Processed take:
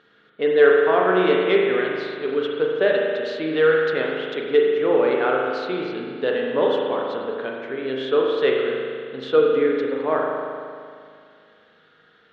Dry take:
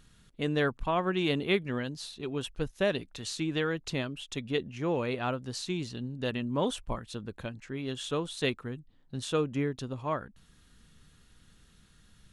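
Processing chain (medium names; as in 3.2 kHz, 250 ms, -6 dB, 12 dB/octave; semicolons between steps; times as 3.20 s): saturation -17 dBFS, distortion -24 dB; cabinet simulation 410–3300 Hz, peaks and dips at 440 Hz +9 dB, 980 Hz -4 dB, 1.5 kHz +4 dB, 2.6 kHz -7 dB; spring tank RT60 2.2 s, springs 38 ms, chirp 70 ms, DRR -1.5 dB; trim +8.5 dB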